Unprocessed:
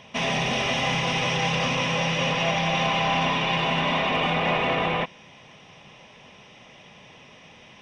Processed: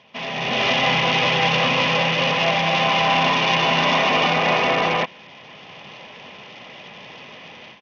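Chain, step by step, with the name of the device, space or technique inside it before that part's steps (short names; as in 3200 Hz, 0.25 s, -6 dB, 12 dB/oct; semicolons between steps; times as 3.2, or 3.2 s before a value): Bluetooth headset (HPF 230 Hz 6 dB/oct; AGC gain up to 14 dB; downsampling 8000 Hz; gain -4.5 dB; SBC 64 kbps 48000 Hz)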